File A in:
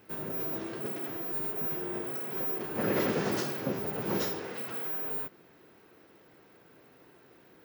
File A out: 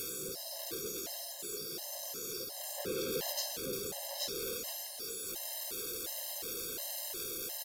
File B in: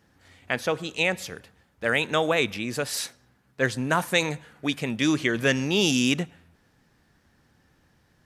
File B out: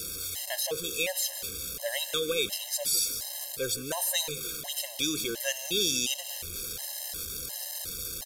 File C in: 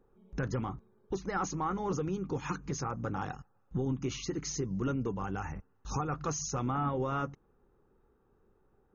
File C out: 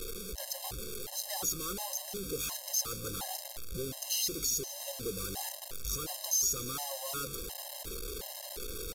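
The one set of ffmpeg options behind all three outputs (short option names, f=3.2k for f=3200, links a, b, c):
-filter_complex "[0:a]aeval=exprs='val(0)+0.5*0.0355*sgn(val(0))':c=same,aemphasis=mode=production:type=75fm,acrossover=split=6300[a][b];[b]acompressor=threshold=-15dB:ratio=4:attack=1:release=60[c];[a][c]amix=inputs=2:normalize=0,equalizer=f=125:t=o:w=1:g=-9,equalizer=f=250:t=o:w=1:g=-10,equalizer=f=500:t=o:w=1:g=4,equalizer=f=1k:t=o:w=1:g=-8,equalizer=f=2k:t=o:w=1:g=-8,equalizer=f=4k:t=o:w=1:g=4,asplit=2[d][e];[e]acompressor=threshold=-25dB:ratio=6,volume=-2dB[f];[d][f]amix=inputs=2:normalize=0,aresample=32000,aresample=44100,asplit=2[g][h];[h]asplit=6[i][j][k][l][m][n];[i]adelay=156,afreqshift=-86,volume=-17dB[o];[j]adelay=312,afreqshift=-172,volume=-21.3dB[p];[k]adelay=468,afreqshift=-258,volume=-25.6dB[q];[l]adelay=624,afreqshift=-344,volume=-29.9dB[r];[m]adelay=780,afreqshift=-430,volume=-34.2dB[s];[n]adelay=936,afreqshift=-516,volume=-38.5dB[t];[o][p][q][r][s][t]amix=inputs=6:normalize=0[u];[g][u]amix=inputs=2:normalize=0,afftfilt=real='re*gt(sin(2*PI*1.4*pts/sr)*(1-2*mod(floor(b*sr/1024/540),2)),0)':imag='im*gt(sin(2*PI*1.4*pts/sr)*(1-2*mod(floor(b*sr/1024/540),2)),0)':win_size=1024:overlap=0.75,volume=-7.5dB"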